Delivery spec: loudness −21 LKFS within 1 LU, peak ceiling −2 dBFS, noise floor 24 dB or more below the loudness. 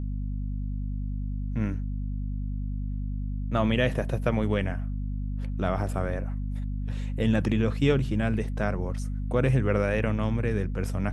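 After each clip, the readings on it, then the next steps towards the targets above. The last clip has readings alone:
mains hum 50 Hz; hum harmonics up to 250 Hz; level of the hum −28 dBFS; integrated loudness −28.5 LKFS; sample peak −9.5 dBFS; target loudness −21.0 LKFS
→ hum removal 50 Hz, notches 5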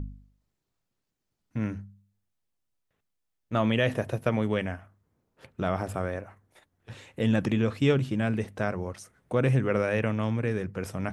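mains hum none found; integrated loudness −28.5 LKFS; sample peak −10.0 dBFS; target loudness −21.0 LKFS
→ level +7.5 dB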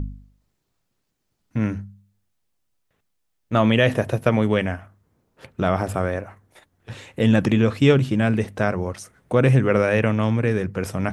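integrated loudness −21.0 LKFS; sample peak −2.5 dBFS; background noise floor −74 dBFS

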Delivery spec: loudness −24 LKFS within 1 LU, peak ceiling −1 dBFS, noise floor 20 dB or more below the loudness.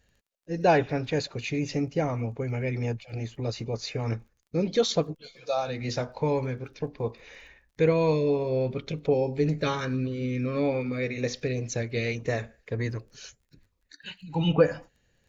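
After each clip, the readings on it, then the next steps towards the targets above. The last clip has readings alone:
crackle rate 18 per second; integrated loudness −28.5 LKFS; sample peak −8.0 dBFS; target loudness −24.0 LKFS
→ click removal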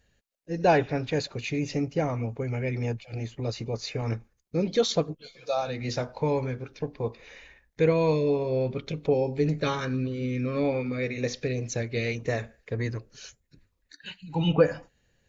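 crackle rate 0 per second; integrated loudness −28.5 LKFS; sample peak −8.0 dBFS; target loudness −24.0 LKFS
→ level +4.5 dB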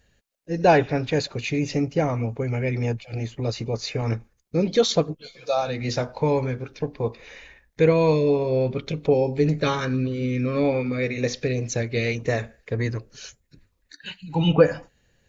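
integrated loudness −24.0 LKFS; sample peak −3.5 dBFS; background noise floor −68 dBFS

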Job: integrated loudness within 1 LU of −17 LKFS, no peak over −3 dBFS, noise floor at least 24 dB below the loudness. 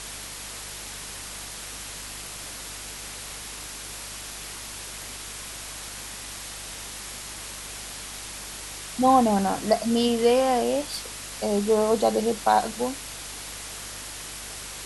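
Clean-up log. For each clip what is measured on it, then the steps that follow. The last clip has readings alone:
mains hum 50 Hz; hum harmonics up to 300 Hz; level of the hum −47 dBFS; background noise floor −38 dBFS; target noise floor −52 dBFS; integrated loudness −28.0 LKFS; sample peak −7.0 dBFS; target loudness −17.0 LKFS
→ hum removal 50 Hz, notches 6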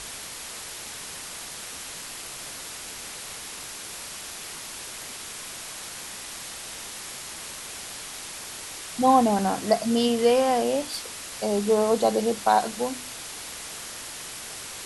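mains hum none found; background noise floor −38 dBFS; target noise floor −52 dBFS
→ noise reduction from a noise print 14 dB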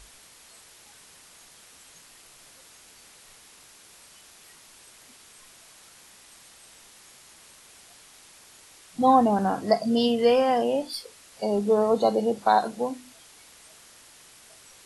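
background noise floor −52 dBFS; integrated loudness −23.5 LKFS; sample peak −6.5 dBFS; target loudness −17.0 LKFS
→ level +6.5 dB
brickwall limiter −3 dBFS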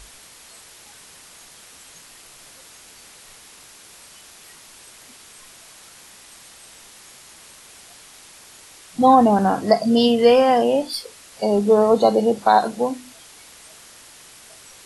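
integrated loudness −17.0 LKFS; sample peak −3.0 dBFS; background noise floor −46 dBFS

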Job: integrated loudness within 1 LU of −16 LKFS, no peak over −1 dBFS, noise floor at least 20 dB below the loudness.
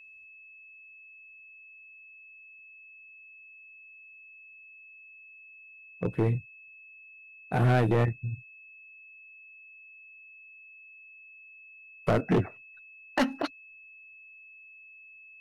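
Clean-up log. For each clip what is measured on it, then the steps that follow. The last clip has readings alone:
share of clipped samples 0.7%; peaks flattened at −19.0 dBFS; interfering tone 2,600 Hz; level of the tone −49 dBFS; integrated loudness −29.0 LKFS; sample peak −19.0 dBFS; target loudness −16.0 LKFS
→ clipped peaks rebuilt −19 dBFS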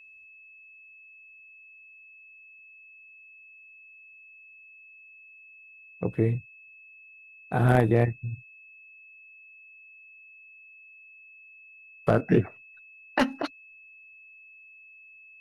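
share of clipped samples 0.0%; interfering tone 2,600 Hz; level of the tone −49 dBFS
→ notch filter 2,600 Hz, Q 30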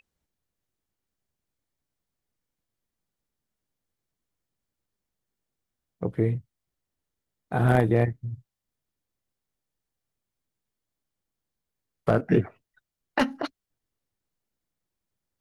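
interfering tone none found; integrated loudness −26.0 LKFS; sample peak −10.0 dBFS; target loudness −16.0 LKFS
→ level +10 dB
brickwall limiter −1 dBFS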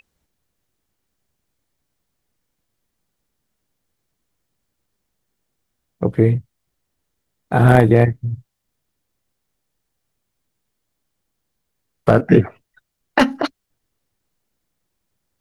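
integrated loudness −16.5 LKFS; sample peak −1.0 dBFS; background noise floor −76 dBFS

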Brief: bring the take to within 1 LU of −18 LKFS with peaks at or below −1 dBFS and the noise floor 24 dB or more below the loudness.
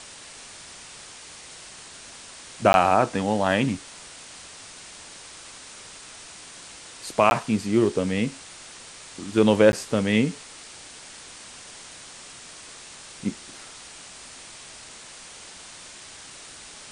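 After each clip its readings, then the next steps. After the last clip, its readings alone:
number of dropouts 3; longest dropout 11 ms; background noise floor −44 dBFS; target noise floor −47 dBFS; integrated loudness −22.5 LKFS; sample peak −3.0 dBFS; target loudness −18.0 LKFS
→ repair the gap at 0:02.73/0:07.30/0:09.72, 11 ms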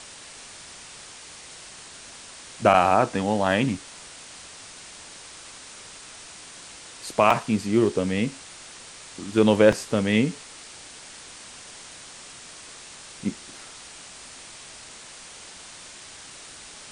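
number of dropouts 0; background noise floor −44 dBFS; target noise floor −47 dBFS
→ broadband denoise 6 dB, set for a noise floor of −44 dBFS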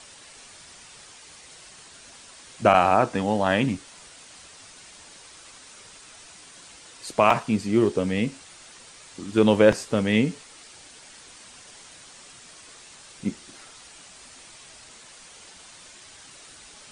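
background noise floor −48 dBFS; integrated loudness −22.5 LKFS; sample peak −3.0 dBFS; target loudness −18.0 LKFS
→ level +4.5 dB
brickwall limiter −1 dBFS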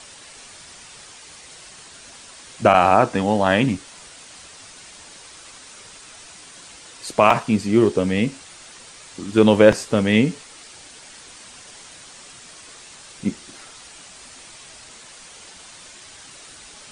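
integrated loudness −18.0 LKFS; sample peak −1.0 dBFS; background noise floor −44 dBFS

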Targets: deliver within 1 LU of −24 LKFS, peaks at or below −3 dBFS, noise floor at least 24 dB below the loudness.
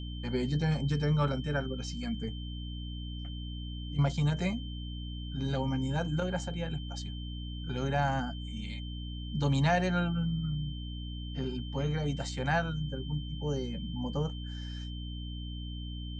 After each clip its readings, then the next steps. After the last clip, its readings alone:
mains hum 60 Hz; hum harmonics up to 300 Hz; level of the hum −36 dBFS; interfering tone 3,100 Hz; level of the tone −47 dBFS; integrated loudness −33.5 LKFS; sample peak −16.0 dBFS; target loudness −24.0 LKFS
→ mains-hum notches 60/120/180/240/300 Hz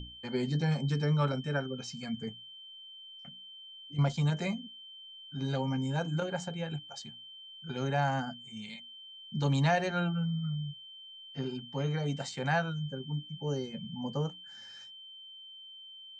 mains hum none found; interfering tone 3,100 Hz; level of the tone −47 dBFS
→ notch filter 3,100 Hz, Q 30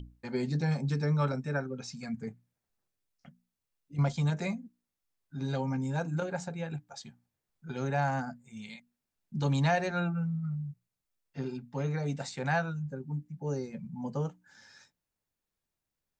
interfering tone none found; integrated loudness −33.5 LKFS; sample peak −16.5 dBFS; target loudness −24.0 LKFS
→ level +9.5 dB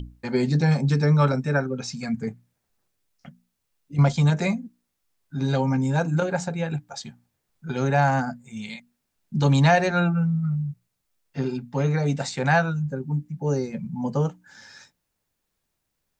integrated loudness −24.0 LKFS; sample peak −7.0 dBFS; background noise floor −78 dBFS

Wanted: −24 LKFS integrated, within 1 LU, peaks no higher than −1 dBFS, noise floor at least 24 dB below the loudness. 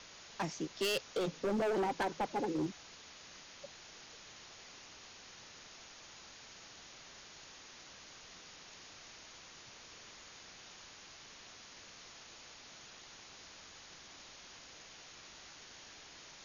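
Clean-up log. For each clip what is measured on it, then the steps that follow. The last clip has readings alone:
share of clipped samples 1.3%; peaks flattened at −30.0 dBFS; background noise floor −55 dBFS; target noise floor −68 dBFS; integrated loudness −43.5 LKFS; sample peak −30.0 dBFS; target loudness −24.0 LKFS
→ clipped peaks rebuilt −30 dBFS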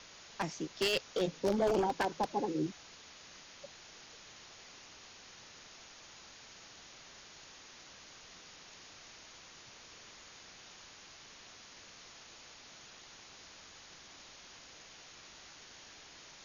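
share of clipped samples 0.0%; background noise floor −55 dBFS; target noise floor −59 dBFS
→ noise reduction from a noise print 6 dB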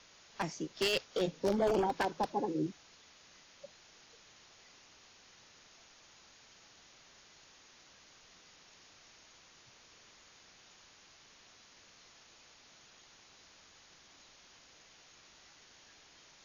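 background noise floor −61 dBFS; integrated loudness −34.0 LKFS; sample peak −21.0 dBFS; target loudness −24.0 LKFS
→ level +10 dB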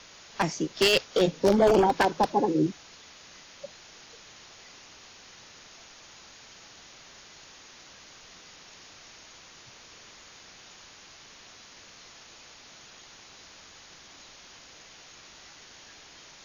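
integrated loudness −24.0 LKFS; sample peak −11.0 dBFS; background noise floor −51 dBFS

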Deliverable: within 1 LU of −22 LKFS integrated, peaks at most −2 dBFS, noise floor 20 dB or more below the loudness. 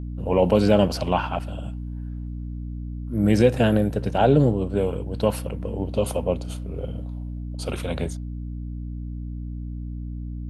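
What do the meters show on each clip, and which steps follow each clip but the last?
mains hum 60 Hz; hum harmonics up to 300 Hz; level of the hum −30 dBFS; integrated loudness −24.5 LKFS; sample peak −4.0 dBFS; target loudness −22.0 LKFS
→ hum removal 60 Hz, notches 5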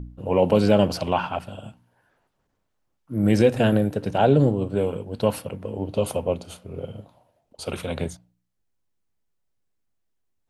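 mains hum none found; integrated loudness −23.0 LKFS; sample peak −5.0 dBFS; target loudness −22.0 LKFS
→ level +1 dB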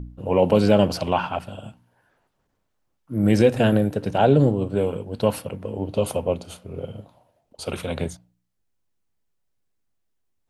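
integrated loudness −22.0 LKFS; sample peak −4.0 dBFS; background noise floor −73 dBFS

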